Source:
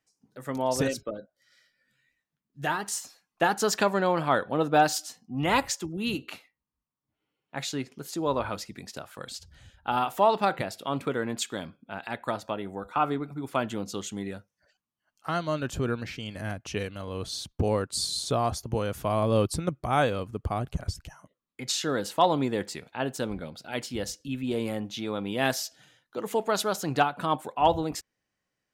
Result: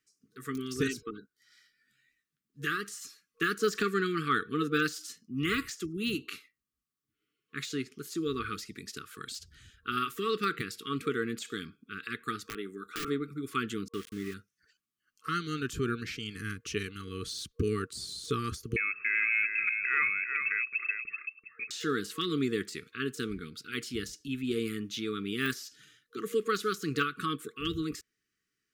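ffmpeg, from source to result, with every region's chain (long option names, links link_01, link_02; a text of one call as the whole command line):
ffmpeg -i in.wav -filter_complex "[0:a]asettb=1/sr,asplit=3[link_01][link_02][link_03];[link_01]atrim=end=12.484[link_04];[link_02]atrim=start=12.48:end=13.08,asetpts=PTS-STARTPTS,afade=type=in:duration=0.004:curve=qsin,afade=type=out:start_time=0.596:duration=0.004:curve=qsin,highpass=210,aeval=exprs='(mod(13.3*val(0)+1,2)-1)/13.3':channel_layout=same[link_05];[link_03]atrim=start=13.076[link_06];[link_04][link_05]acrossfade=duration=0.004:curve1=hsin:curve2=qsin[link_07];[link_07][link_06]acrossfade=duration=0.004:curve1=qsin:curve2=hsin,asettb=1/sr,asplit=3[link_08][link_09][link_10];[link_08]atrim=end=13.884[link_11];[link_09]atrim=start=13.88:end=14.34,asetpts=PTS-STARTPTS,afade=type=in:duration=0.004:curve=qsin,afade=type=out:start_time=0.456:duration=0.004:curve=qsin,lowpass=frequency=2900:width=0.5412,lowpass=frequency=2900:width=1.3066,aeval=exprs='val(0)+0.000501*(sin(2*PI*60*n/s)+sin(2*PI*2*60*n/s)/2+sin(2*PI*3*60*n/s)/3+sin(2*PI*4*60*n/s)/4+sin(2*PI*5*60*n/s)/5)':channel_layout=same,aeval=exprs='val(0)*gte(abs(val(0)),0.00841)':channel_layout=same[link_12];[link_10]atrim=start=14.336[link_13];[link_11][link_12]acrossfade=duration=0.004:curve1=hsin:curve2=qsin[link_14];[link_14][link_13]acrossfade=duration=0.004:curve1=qsin:curve2=hsin,asettb=1/sr,asplit=3[link_15][link_16][link_17];[link_15]atrim=end=18.764[link_18];[link_16]atrim=start=18.76:end=21.71,asetpts=PTS-STARTPTS,afade=type=in:duration=0.004:curve=qsin,afade=type=out:start_time=2.946:duration=0.004:curve=qsin,lowpass=frequency=2300:width_type=q:width=0.5098,lowpass=frequency=2300:width_type=q:width=0.6013,lowpass=frequency=2300:width_type=q:width=0.9,lowpass=frequency=2300:width_type=q:width=2.563,afreqshift=-2700,acompressor=threshold=-29dB:ratio=1.5:attack=3.2:release=140:knee=1:detection=peak,aecho=1:1:385:0.447,atrim=end_sample=130095[link_19];[link_17]atrim=start=21.706[link_20];[link_18][link_19]acrossfade=duration=0.004:curve1=hsin:curve2=qsin[link_21];[link_21][link_20]acrossfade=duration=0.004:curve1=qsin:curve2=hsin,afftfilt=real='re*(1-between(b*sr/4096,470,1100))':imag='im*(1-between(b*sr/4096,470,1100))':win_size=4096:overlap=0.75,bass=frequency=250:gain=-5,treble=frequency=4000:gain=2,deesser=0.85" out.wav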